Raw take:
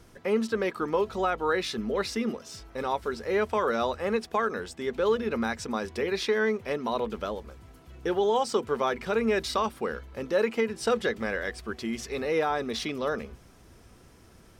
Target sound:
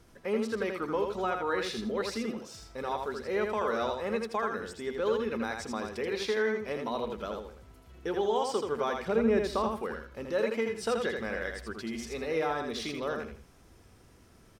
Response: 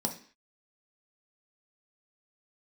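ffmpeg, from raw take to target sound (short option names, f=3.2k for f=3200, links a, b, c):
-filter_complex "[0:a]asettb=1/sr,asplit=3[a][b][c];[a]atrim=end=9.084[d];[b]atrim=start=9.08:end=9.75,asetpts=PTS-STARTPTS,afade=t=in:d=0.004:c=qsin,afade=t=out:st=0.666:d=0.004:c=qsin,tiltshelf=f=1.1k:g=6[e];[c]atrim=start=9.746[f];[d][e]acrossfade=d=0.004:c1=hsin:c2=qsin[g];[g][f]acrossfade=d=0.004:c1=qsin:c2=hsin,aecho=1:1:81|162|243:0.596|0.137|0.0315,volume=-5dB"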